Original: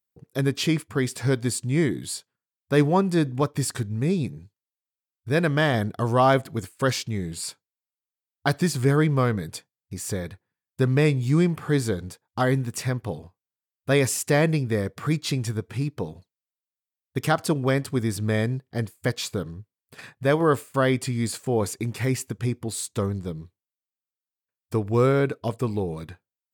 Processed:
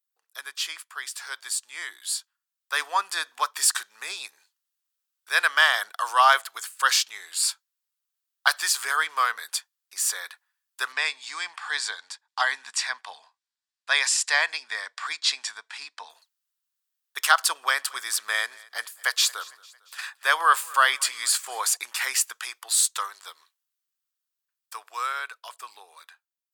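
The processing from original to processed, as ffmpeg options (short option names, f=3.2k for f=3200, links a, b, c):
-filter_complex "[0:a]asettb=1/sr,asplit=3[a][b][c];[a]atrim=end=10.924[d];[b]atrim=start=10.92:end=16.1,asetpts=PTS-STARTPTS,afade=t=in:d=0.004:c=qsin,afade=t=out:st=5.176:d=0.004:c=qsin,highpass=170,equalizer=f=230:t=q:w=4:g=6,equalizer=f=360:t=q:w=4:g=-8,equalizer=f=510:t=q:w=4:g=-7,equalizer=f=1.3k:t=q:w=4:g=-8,equalizer=f=2.9k:t=q:w=4:g=-5,equalizer=f=6.3k:t=q:w=4:g=-6,lowpass=f=7.3k:w=0.5412,lowpass=f=7.3k:w=1.3066[e];[c]atrim=start=16.096[f];[d][e]acrossfade=d=0.004:c1=hsin:c2=qsin[g];[g][f]acrossfade=d=0.004:c1=qsin:c2=hsin,asettb=1/sr,asplit=3[h][i][j];[h]atrim=end=17.544[k];[i]atrim=start=17.54:end=21.77,asetpts=PTS-STARTPTS,afade=t=in:d=0.004:c=qsin,afade=t=out:st=4.226:d=0.004:c=qsin,aecho=1:1:226|452|678:0.0668|0.0348|0.0181,atrim=end_sample=186543[l];[j]atrim=start=21.766[m];[k][l]acrossfade=d=0.004:c1=hsin:c2=qsin[n];[n][m]acrossfade=d=0.004:c1=qsin:c2=hsin,asettb=1/sr,asplit=3[o][p][q];[o]atrim=end=22.434[r];[p]atrim=start=22.43:end=25.56,asetpts=PTS-STARTPTS,afade=t=in:d=0.004:c=qsin,afade=t=out:st=3.126:d=0.004:c=qsin,equalizer=f=220:w=0.83:g=-8.5[s];[q]atrim=start=25.556[t];[r][s]acrossfade=d=0.004:c1=hsin:c2=qsin[u];[u][t]acrossfade=d=0.004:c1=qsin:c2=hsin,highpass=f=1.1k:w=0.5412,highpass=f=1.1k:w=1.3066,equalizer=f=2.2k:t=o:w=0.42:g=-6,dynaudnorm=f=260:g=21:m=11.5dB"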